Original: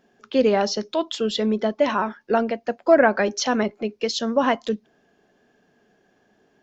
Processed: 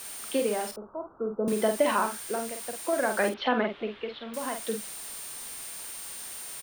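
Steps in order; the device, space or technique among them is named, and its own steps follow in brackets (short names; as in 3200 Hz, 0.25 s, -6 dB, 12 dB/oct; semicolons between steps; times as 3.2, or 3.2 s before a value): medium wave at night (BPF 150–4200 Hz; compressor, threshold -18 dBFS, peak gain reduction 9 dB; tremolo 0.58 Hz, depth 77%; whine 9000 Hz -43 dBFS; white noise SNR 13 dB); 0.71–1.48 steep low-pass 1400 Hz 96 dB/oct; 3.29–4.34 Chebyshev low-pass 3500 Hz, order 4; bell 100 Hz -4.5 dB 2.9 oct; doubler 48 ms -6 dB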